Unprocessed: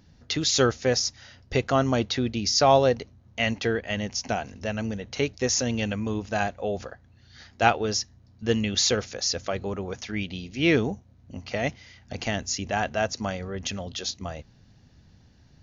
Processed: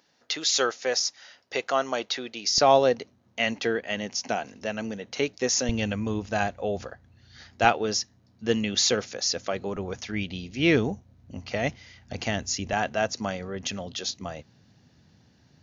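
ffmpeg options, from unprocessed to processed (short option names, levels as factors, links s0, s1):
-af "asetnsamples=n=441:p=0,asendcmd='2.58 highpass f 210;5.69 highpass f 56;7.65 highpass f 150;9.76 highpass f 46;12.73 highpass f 120',highpass=520"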